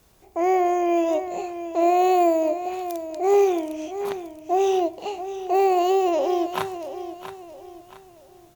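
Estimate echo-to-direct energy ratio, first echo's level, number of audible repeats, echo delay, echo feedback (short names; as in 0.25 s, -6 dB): -11.0 dB, -11.5 dB, 3, 0.675 s, 36%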